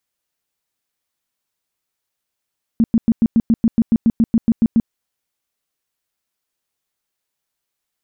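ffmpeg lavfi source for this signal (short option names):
-f lavfi -i "aevalsrc='0.355*sin(2*PI*228*mod(t,0.14))*lt(mod(t,0.14),9/228)':d=2.1:s=44100"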